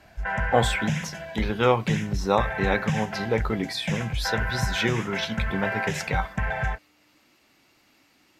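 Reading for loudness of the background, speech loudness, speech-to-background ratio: -30.0 LUFS, -27.5 LUFS, 2.5 dB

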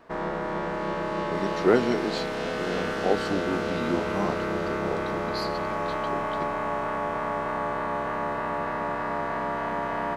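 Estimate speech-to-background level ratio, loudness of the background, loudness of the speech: -1.5 dB, -29.0 LUFS, -30.5 LUFS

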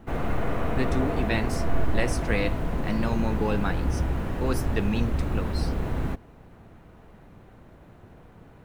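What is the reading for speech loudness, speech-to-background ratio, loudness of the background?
-30.5 LUFS, -1.0 dB, -29.5 LUFS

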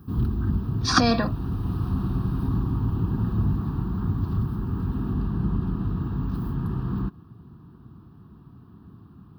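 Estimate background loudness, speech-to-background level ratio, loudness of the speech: -27.5 LUFS, 4.0 dB, -23.5 LUFS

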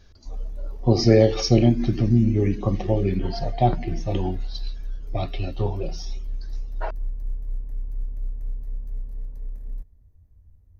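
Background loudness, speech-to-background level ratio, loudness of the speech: -36.5 LUFS, 14.5 dB, -22.0 LUFS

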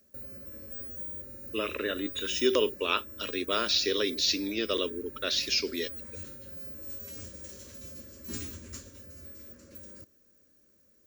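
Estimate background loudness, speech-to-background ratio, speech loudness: -40.5 LUFS, 11.5 dB, -29.0 LUFS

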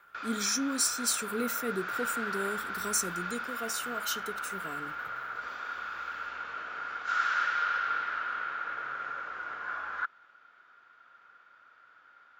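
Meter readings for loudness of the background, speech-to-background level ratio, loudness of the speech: -34.5 LUFS, 1.5 dB, -33.0 LUFS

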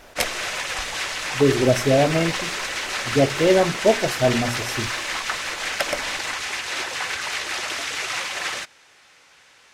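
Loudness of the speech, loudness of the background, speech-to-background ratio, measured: -21.5 LUFS, -26.0 LUFS, 4.5 dB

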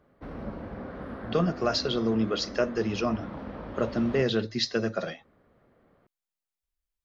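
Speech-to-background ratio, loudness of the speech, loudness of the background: 11.5 dB, -28.5 LUFS, -40.0 LUFS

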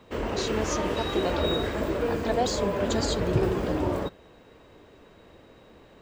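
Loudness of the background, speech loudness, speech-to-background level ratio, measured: -28.5 LUFS, -33.0 LUFS, -4.5 dB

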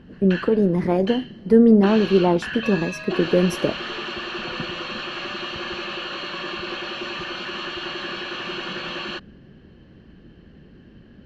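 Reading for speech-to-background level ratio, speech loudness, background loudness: 10.5 dB, -19.5 LUFS, -30.0 LUFS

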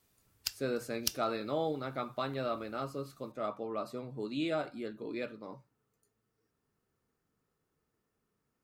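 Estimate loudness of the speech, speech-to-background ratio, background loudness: -37.5 LUFS, 1.0 dB, -38.5 LUFS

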